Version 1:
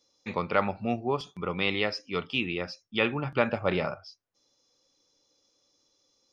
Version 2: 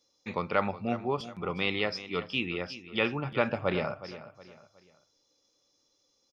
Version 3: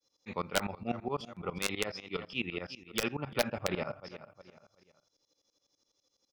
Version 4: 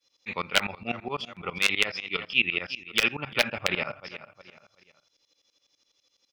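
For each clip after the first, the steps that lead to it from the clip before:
feedback echo 0.366 s, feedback 36%, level -14.5 dB; gain -2 dB
wrapped overs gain 15 dB; tremolo saw up 12 Hz, depth 95%
bell 2600 Hz +14.5 dB 1.7 oct

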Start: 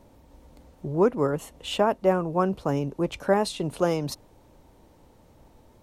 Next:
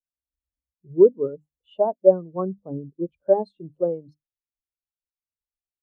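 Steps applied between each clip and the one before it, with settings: notches 50/100/150/200/250/300 Hz; spectral expander 2.5:1; gain +6.5 dB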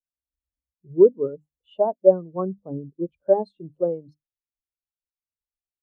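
short-mantissa float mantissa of 8-bit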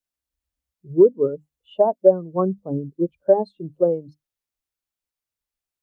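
compressor 2:1, threshold -19 dBFS, peak gain reduction 6.5 dB; gain +6 dB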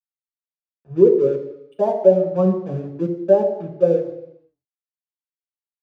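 crossover distortion -43 dBFS; reverb RT60 0.85 s, pre-delay 3 ms, DRR 1 dB; gain -8.5 dB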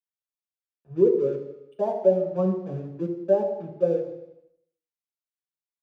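feedback echo 79 ms, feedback 54%, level -15 dB; gain -6.5 dB

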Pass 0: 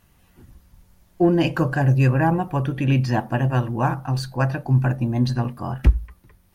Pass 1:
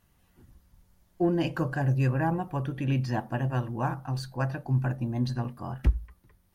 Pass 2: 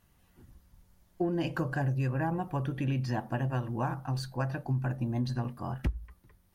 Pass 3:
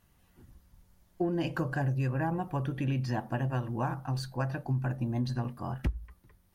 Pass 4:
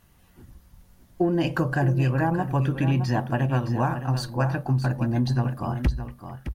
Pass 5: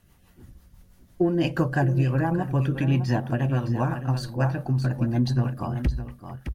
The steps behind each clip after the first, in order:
bell 2500 Hz -2.5 dB 0.29 oct; gain -8 dB
compressor 10:1, threshold -26 dBFS, peak gain reduction 10.5 dB
nothing audible
echo 0.615 s -10 dB; gain +7.5 dB
rotary speaker horn 6 Hz; gain +1.5 dB

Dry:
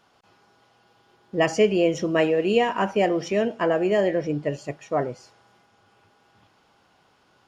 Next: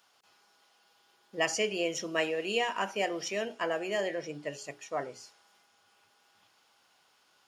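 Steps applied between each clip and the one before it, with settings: tilt +3.5 dB/oct; notches 60/120/180/240/300/360/420 Hz; gain -7.5 dB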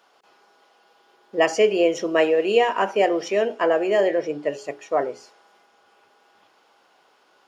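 EQ curve 110 Hz 0 dB, 410 Hz +15 dB, 9400 Hz -2 dB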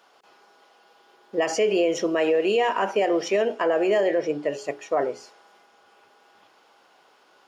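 limiter -15 dBFS, peak gain reduction 9 dB; gain +1.5 dB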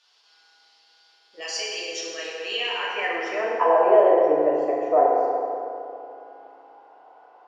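band-pass sweep 4400 Hz -> 710 Hz, 2.34–3.84; FDN reverb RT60 2.8 s, high-frequency decay 0.5×, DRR -5.5 dB; gain +4 dB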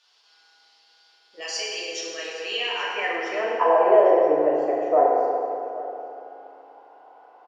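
echo 0.824 s -18.5 dB

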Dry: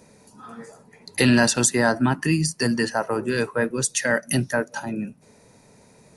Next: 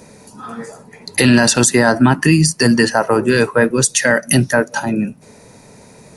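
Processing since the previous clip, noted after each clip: maximiser +11.5 dB; gain -1 dB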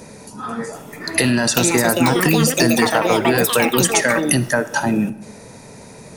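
compressor, threshold -17 dBFS, peak gain reduction 10.5 dB; echoes that change speed 0.735 s, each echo +6 st, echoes 2; digital reverb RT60 0.94 s, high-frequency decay 0.6×, pre-delay 20 ms, DRR 16 dB; gain +3 dB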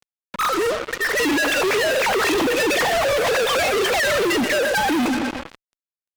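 sine-wave speech; feedback echo 0.124 s, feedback 60%, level -14.5 dB; fuzz box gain 36 dB, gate -34 dBFS; gain -5 dB

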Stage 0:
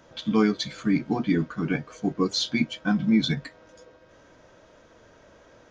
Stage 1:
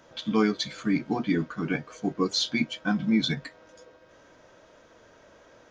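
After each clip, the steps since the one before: low shelf 210 Hz -6 dB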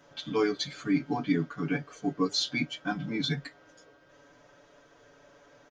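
comb 7 ms, depth 98%; gain -5.5 dB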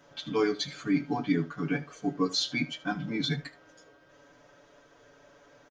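echo 76 ms -18 dB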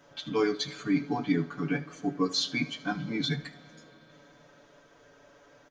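reverb RT60 4.0 s, pre-delay 30 ms, DRR 19.5 dB

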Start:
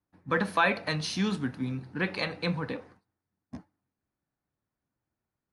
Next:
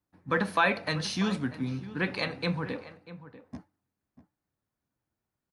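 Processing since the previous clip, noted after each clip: outdoor echo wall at 110 m, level -15 dB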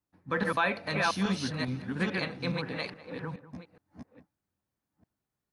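reverse delay 0.42 s, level -1 dB; gain -3.5 dB

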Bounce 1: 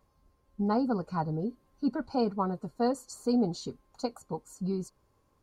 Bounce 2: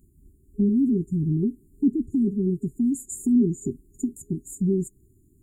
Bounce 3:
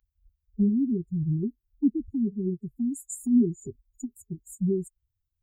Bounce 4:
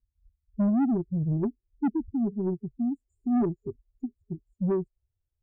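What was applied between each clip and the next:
FFT band-reject 410–6800 Hz; in parallel at +2.5 dB: compressor, threshold -37 dBFS, peak gain reduction 13 dB; on the sum: gain +5.5 dB
per-bin expansion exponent 2
low-pass sweep 260 Hz -> 560 Hz, 0.37–2.1; soft clip -20.5 dBFS, distortion -11 dB

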